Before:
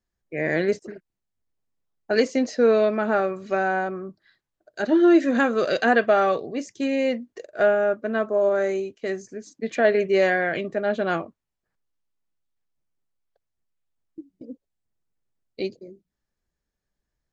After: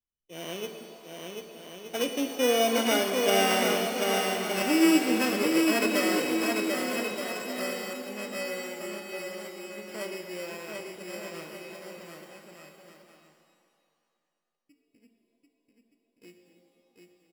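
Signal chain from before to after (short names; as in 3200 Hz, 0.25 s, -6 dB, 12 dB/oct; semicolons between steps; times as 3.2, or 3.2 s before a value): sample sorter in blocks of 16 samples; Doppler pass-by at 3.65, 28 m/s, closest 25 m; bouncing-ball echo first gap 0.74 s, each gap 0.65×, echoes 5; shimmer reverb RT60 2.4 s, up +7 st, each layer -8 dB, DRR 6 dB; gain -2.5 dB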